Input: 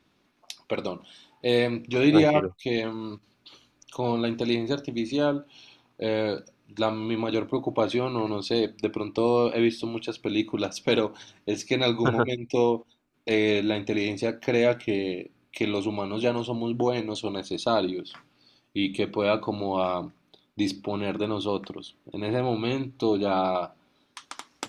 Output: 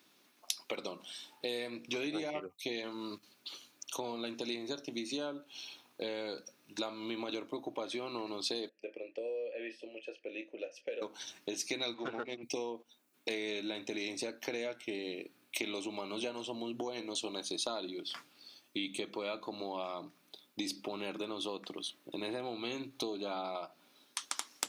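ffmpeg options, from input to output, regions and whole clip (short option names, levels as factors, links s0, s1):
-filter_complex "[0:a]asettb=1/sr,asplit=3[s0][s1][s2];[s0]atrim=end=8.694[s3];[s1]atrim=start=8.69:end=11.02,asetpts=PTS-STARTPTS,afade=t=in:d=0.004:c=qsin,afade=t=out:st=2.326:d=0.004:c=qsin,asplit=3[s4][s5][s6];[s4]bandpass=f=530:t=q:w=8,volume=1[s7];[s5]bandpass=f=1840:t=q:w=8,volume=0.501[s8];[s6]bandpass=f=2480:t=q:w=8,volume=0.355[s9];[s7][s8][s9]amix=inputs=3:normalize=0,equalizer=f=3800:w=5.3:g=-11.5,asplit=2[s10][s11];[s11]adelay=27,volume=0.299[s12];[s10][s12]amix=inputs=2:normalize=0,atrim=end_sample=102753[s13];[s2]atrim=start=11.016[s14];[s3][s13]acrossfade=d=0.004:c1=hsin:c2=qsin[s15];[s15][s14]acrossfade=d=0.004:c1=qsin:c2=hsin,asettb=1/sr,asplit=3[s16][s17][s18];[s16]atrim=end=11.944[s19];[s17]atrim=start=11.94:end=12.43,asetpts=PTS-STARTPTS,afade=t=in:d=0.004:c=qsin,afade=t=out:st=0.486:d=0.004:c=qsin,aeval=exprs='if(lt(val(0),0),0.447*val(0),val(0))':c=same,highpass=130,lowpass=3600[s20];[s18]atrim=start=12.426[s21];[s19][s20]acrossfade=d=0.004:c1=hsin:c2=qsin[s22];[s22][s21]acrossfade=d=0.004:c1=qsin:c2=hsin,highpass=240,acompressor=threshold=0.0178:ratio=6,aemphasis=mode=production:type=75kf,volume=0.794"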